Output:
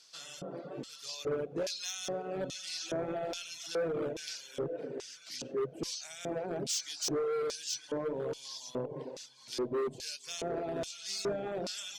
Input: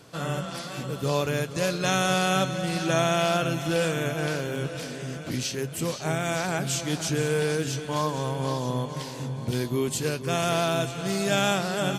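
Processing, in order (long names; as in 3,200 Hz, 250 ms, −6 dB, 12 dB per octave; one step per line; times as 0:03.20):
hum removal 61.23 Hz, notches 17
on a send: echo with a time of its own for lows and highs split 2,500 Hz, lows 238 ms, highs 135 ms, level −15 dB
on the sum: dynamic equaliser 1,200 Hz, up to −5 dB, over −40 dBFS, Q 1.5
brickwall limiter −18 dBFS, peak gain reduction 6 dB
auto-filter band-pass square 1.2 Hz 420–5,200 Hz
hard clipping −32 dBFS, distortion −11 dB
reverb reduction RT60 0.76 s
level +3.5 dB
Opus 256 kbit/s 48,000 Hz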